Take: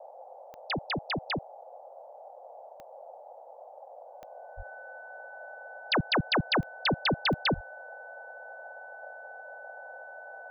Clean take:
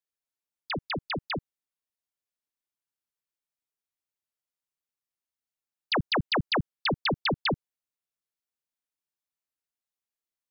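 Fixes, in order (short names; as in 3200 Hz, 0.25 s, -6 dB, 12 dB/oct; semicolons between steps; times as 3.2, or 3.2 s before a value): de-click; notch 1500 Hz, Q 30; de-plosive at 4.56/7.54; noise print and reduce 30 dB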